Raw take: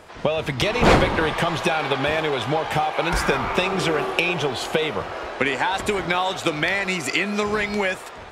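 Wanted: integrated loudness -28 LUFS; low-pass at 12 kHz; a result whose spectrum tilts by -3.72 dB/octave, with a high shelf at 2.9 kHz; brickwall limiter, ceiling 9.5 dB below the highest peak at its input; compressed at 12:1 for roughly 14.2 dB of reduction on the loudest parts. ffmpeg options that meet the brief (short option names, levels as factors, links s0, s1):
-af "lowpass=12000,highshelf=f=2900:g=-8.5,acompressor=threshold=0.0562:ratio=12,volume=1.41,alimiter=limit=0.141:level=0:latency=1"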